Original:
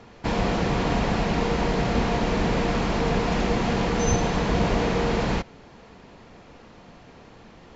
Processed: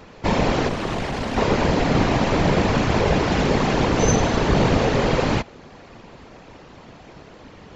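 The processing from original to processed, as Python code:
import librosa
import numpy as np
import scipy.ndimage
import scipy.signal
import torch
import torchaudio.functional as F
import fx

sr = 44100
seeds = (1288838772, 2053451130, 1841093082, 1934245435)

y = fx.tube_stage(x, sr, drive_db=26.0, bias=0.65, at=(0.68, 1.37))
y = fx.whisperise(y, sr, seeds[0])
y = F.gain(torch.from_numpy(y), 4.5).numpy()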